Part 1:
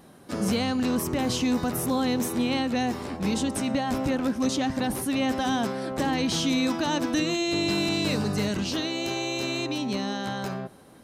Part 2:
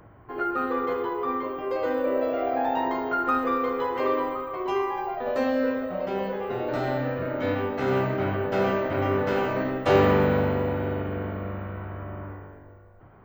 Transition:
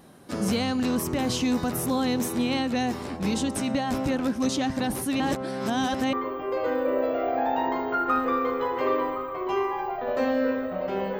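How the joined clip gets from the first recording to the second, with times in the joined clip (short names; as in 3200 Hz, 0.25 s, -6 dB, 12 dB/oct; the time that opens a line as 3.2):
part 1
5.2–6.13 reverse
6.13 switch to part 2 from 1.32 s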